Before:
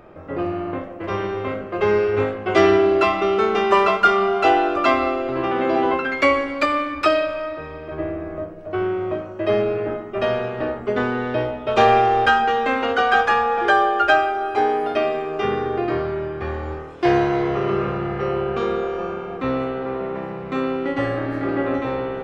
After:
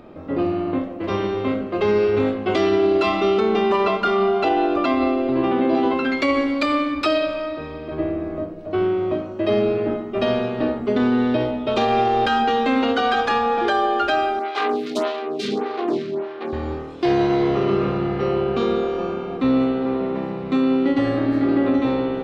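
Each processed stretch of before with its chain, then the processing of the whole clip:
3.40–5.75 s: treble shelf 4.3 kHz -11.5 dB + band-stop 1.3 kHz, Q 14
14.39–16.53 s: self-modulated delay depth 0.42 ms + high-pass 170 Hz 24 dB/octave + lamp-driven phase shifter 1.7 Hz
whole clip: fifteen-band graphic EQ 250 Hz +10 dB, 1.6 kHz -4 dB, 4 kHz +8 dB; peak limiter -10.5 dBFS

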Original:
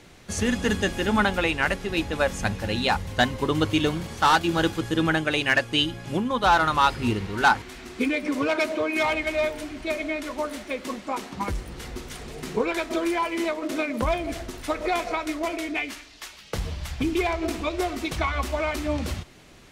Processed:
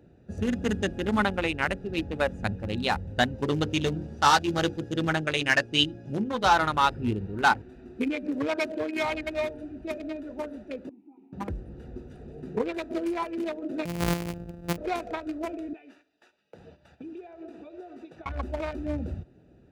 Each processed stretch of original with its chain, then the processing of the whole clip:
3.34–6.53 s: peaking EQ 5.6 kHz +7 dB + hum notches 60/120/180/240/300/360/420/480 Hz + doubling 14 ms -8 dB
10.89–11.33 s: vowel filter u + compression 4:1, threshold -44 dBFS
13.85–14.78 s: sorted samples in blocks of 256 samples + treble shelf 9.1 kHz +3 dB
15.73–18.26 s: frequency weighting A + compression 4:1, threshold -33 dBFS + gate -44 dBFS, range -8 dB
whole clip: local Wiener filter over 41 samples; high-pass 55 Hz; trim -2 dB

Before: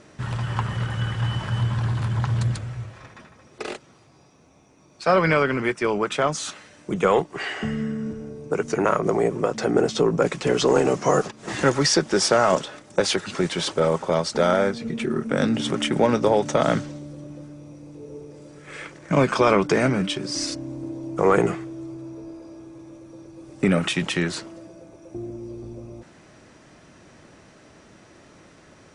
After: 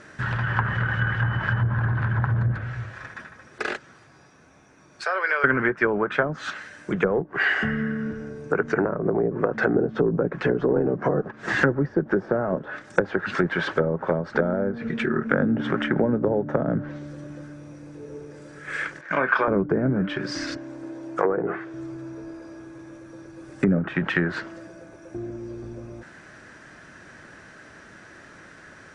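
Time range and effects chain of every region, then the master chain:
5.04–5.44 s: Chebyshev high-pass 410 Hz, order 4 + compression 2:1, threshold -34 dBFS
19.01–19.48 s: high-pass 880 Hz 6 dB/octave + distance through air 160 m + doubling 31 ms -12 dB
20.57–21.74 s: tone controls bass -12 dB, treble -2 dB + hum notches 50/100/150/200/250/300/350/400/450 Hz
whole clip: low-pass that closes with the level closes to 420 Hz, closed at -16.5 dBFS; peaking EQ 1.6 kHz +14.5 dB 0.55 oct

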